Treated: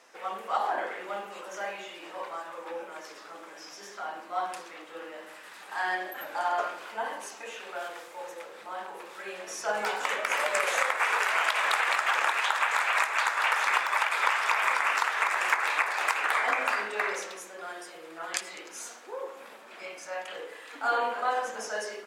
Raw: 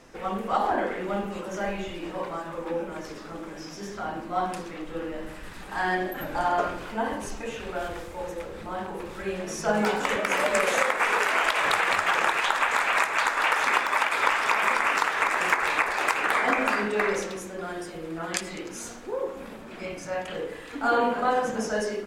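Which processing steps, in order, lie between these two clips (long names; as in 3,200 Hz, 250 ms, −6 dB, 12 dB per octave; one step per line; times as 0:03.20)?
high-pass filter 650 Hz 12 dB per octave
level −2 dB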